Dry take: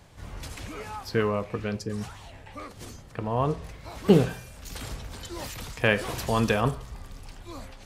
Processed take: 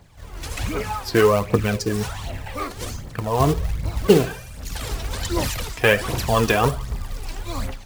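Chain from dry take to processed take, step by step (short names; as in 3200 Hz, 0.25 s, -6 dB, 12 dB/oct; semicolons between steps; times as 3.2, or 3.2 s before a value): 3.4–4.07 low shelf 210 Hz +11.5 dB; AGC gain up to 13.5 dB; short-mantissa float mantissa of 2-bit; phaser 1.3 Hz, delay 3.1 ms, feedback 53%; gain -2.5 dB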